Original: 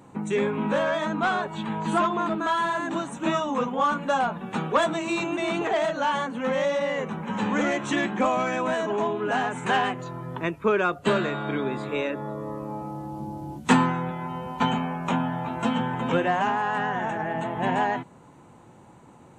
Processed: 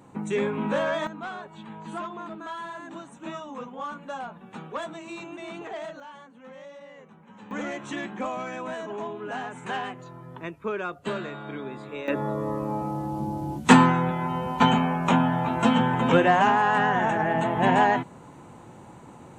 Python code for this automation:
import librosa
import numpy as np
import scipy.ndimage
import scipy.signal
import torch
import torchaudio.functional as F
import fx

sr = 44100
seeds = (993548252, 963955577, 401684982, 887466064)

y = fx.gain(x, sr, db=fx.steps((0.0, -1.5), (1.07, -11.5), (6.0, -20.0), (7.51, -8.0), (12.08, 4.5)))